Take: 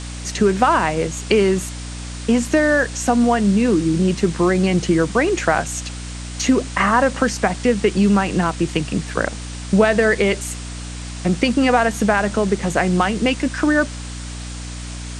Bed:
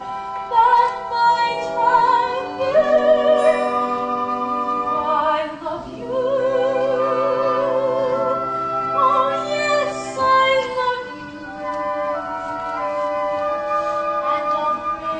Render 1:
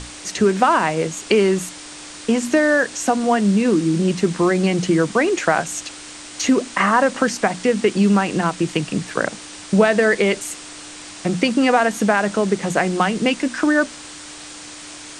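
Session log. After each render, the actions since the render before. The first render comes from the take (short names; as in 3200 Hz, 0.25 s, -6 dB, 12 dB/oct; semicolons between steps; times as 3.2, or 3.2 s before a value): notches 60/120/180/240 Hz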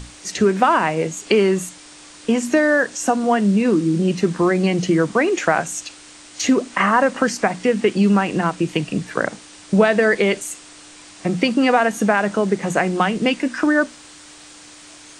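noise print and reduce 6 dB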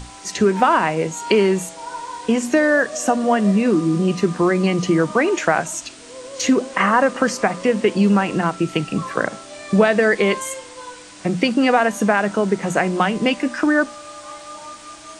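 add bed -16.5 dB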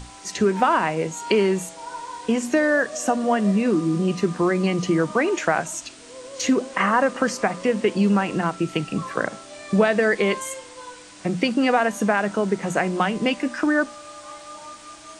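gain -3.5 dB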